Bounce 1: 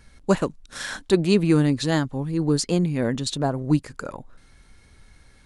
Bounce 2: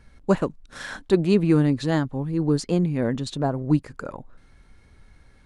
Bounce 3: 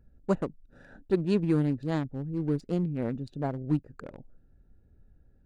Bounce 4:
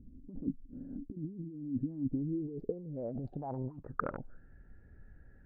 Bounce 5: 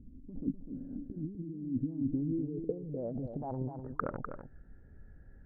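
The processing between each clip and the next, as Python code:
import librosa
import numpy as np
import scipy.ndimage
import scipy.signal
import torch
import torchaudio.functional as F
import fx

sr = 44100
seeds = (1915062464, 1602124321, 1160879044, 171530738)

y1 = fx.high_shelf(x, sr, hz=3000.0, db=-10.0)
y2 = fx.wiener(y1, sr, points=41)
y2 = y2 * librosa.db_to_amplitude(-6.5)
y3 = fx.over_compress(y2, sr, threshold_db=-39.0, ratio=-1.0)
y3 = fx.filter_sweep_lowpass(y3, sr, from_hz=270.0, to_hz=1800.0, start_s=2.0, end_s=4.5, q=5.6)
y3 = y3 * librosa.db_to_amplitude(-5.0)
y4 = fx.lowpass(y3, sr, hz=1400.0, slope=6)
y4 = y4 + 10.0 ** (-8.0 / 20.0) * np.pad(y4, (int(250 * sr / 1000.0), 0))[:len(y4)]
y4 = y4 * librosa.db_to_amplitude(1.5)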